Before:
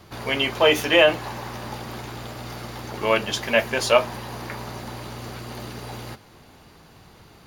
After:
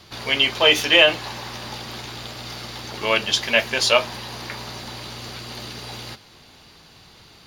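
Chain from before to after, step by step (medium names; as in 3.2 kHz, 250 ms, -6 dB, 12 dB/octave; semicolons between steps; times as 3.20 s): peaking EQ 4.1 kHz +11.5 dB 1.8 oct; trim -2.5 dB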